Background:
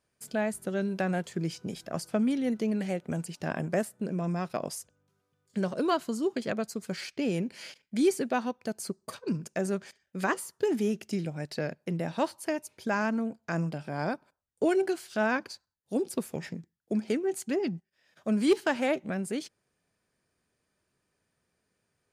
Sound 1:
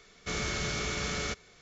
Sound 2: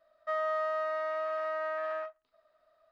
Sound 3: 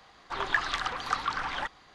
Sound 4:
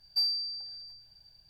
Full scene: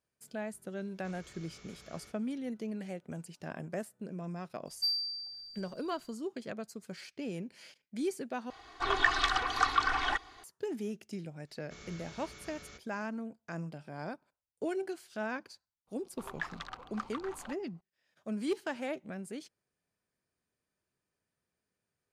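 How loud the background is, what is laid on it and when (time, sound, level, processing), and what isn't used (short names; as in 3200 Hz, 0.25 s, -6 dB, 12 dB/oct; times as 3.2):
background -9.5 dB
0.78 add 1 -18 dB + limiter -29 dBFS
4.66 add 4 -8.5 dB + high shelf 3000 Hz +7.5 dB
8.5 replace with 3 -0.5 dB + comb 2.7 ms, depth 88%
11.44 add 1 -18 dB, fades 0.05 s
15.87 add 3 -11 dB + Wiener smoothing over 25 samples
not used: 2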